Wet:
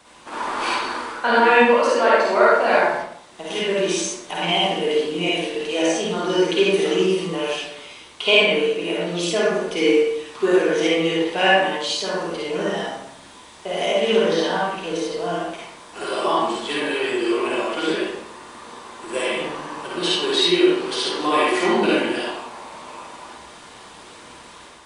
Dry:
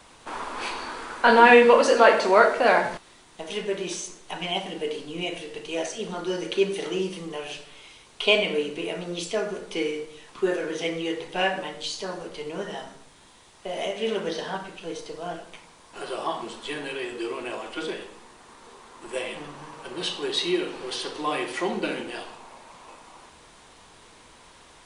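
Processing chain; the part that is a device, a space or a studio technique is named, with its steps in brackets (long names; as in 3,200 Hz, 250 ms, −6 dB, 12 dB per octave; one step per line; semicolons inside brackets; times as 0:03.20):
far laptop microphone (convolution reverb RT60 0.65 s, pre-delay 47 ms, DRR −4.5 dB; high-pass filter 110 Hz 6 dB per octave; automatic gain control gain up to 5 dB)
level −1 dB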